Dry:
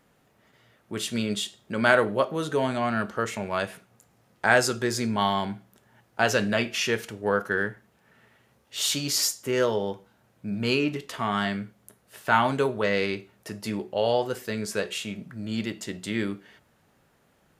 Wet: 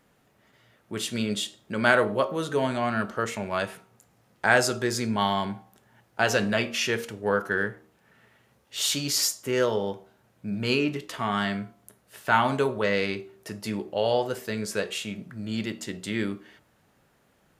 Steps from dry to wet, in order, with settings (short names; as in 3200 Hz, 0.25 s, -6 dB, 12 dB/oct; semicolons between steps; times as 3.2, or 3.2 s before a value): de-hum 77.79 Hz, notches 17